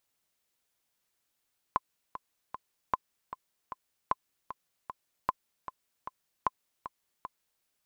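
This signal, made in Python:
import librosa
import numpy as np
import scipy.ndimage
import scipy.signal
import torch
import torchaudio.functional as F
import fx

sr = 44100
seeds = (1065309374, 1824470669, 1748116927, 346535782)

y = fx.click_track(sr, bpm=153, beats=3, bars=5, hz=1030.0, accent_db=12.5, level_db=-12.5)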